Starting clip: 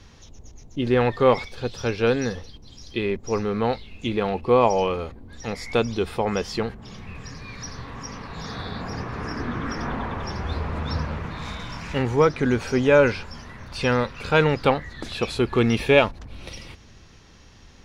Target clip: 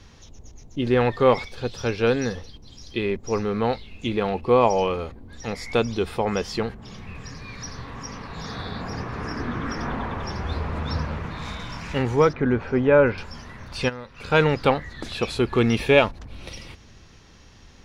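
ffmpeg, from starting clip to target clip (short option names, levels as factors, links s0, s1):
-filter_complex "[0:a]asettb=1/sr,asplit=3[s0][s1][s2];[s0]atrim=end=12.334[s3];[s1]atrim=start=12.33:end=13.18,asetpts=PTS-STARTPTS,afade=t=in:d=0.004:c=qsin,afade=t=out:st=0.846:d=0.004:c=qsin,lowpass=1900[s4];[s2]atrim=start=13.176[s5];[s3][s4]acrossfade=d=0.004:c1=hsin:c2=qsin[s6];[s6][s5]acrossfade=d=0.004:c1=qsin:c2=hsin,asplit=3[s7][s8][s9];[s7]afade=t=out:st=13.88:d=0.02[s10];[s8]acompressor=threshold=0.0251:ratio=12,afade=t=in:st=13.88:d=0.02,afade=t=out:st=14.3:d=0.02[s11];[s9]afade=t=in:st=14.3:d=0.02[s12];[s10][s11][s12]amix=inputs=3:normalize=0"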